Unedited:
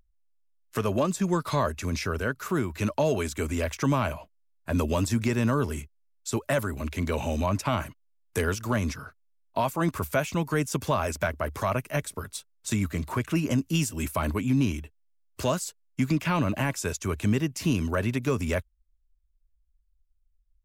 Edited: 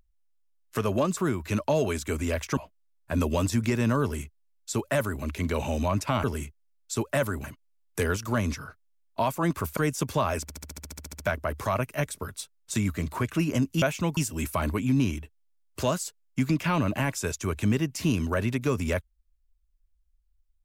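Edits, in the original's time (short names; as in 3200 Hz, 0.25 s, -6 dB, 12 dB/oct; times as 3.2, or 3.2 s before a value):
1.17–2.47 cut
3.87–4.15 cut
5.6–6.8 copy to 7.82
10.15–10.5 move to 13.78
11.15 stutter 0.07 s, 12 plays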